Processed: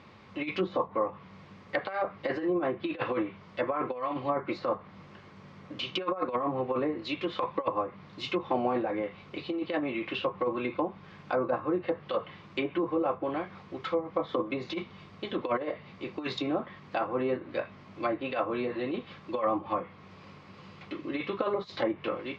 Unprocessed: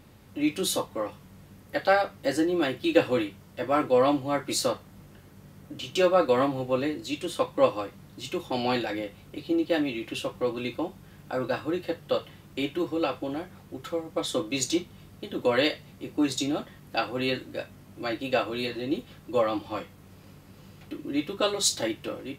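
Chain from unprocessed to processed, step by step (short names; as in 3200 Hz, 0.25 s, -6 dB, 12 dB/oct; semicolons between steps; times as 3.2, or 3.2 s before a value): negative-ratio compressor -26 dBFS, ratio -0.5; speaker cabinet 120–5000 Hz, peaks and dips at 130 Hz -5 dB, 280 Hz -6 dB, 1100 Hz +9 dB, 2200 Hz +6 dB; treble ducked by the level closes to 880 Hz, closed at -24 dBFS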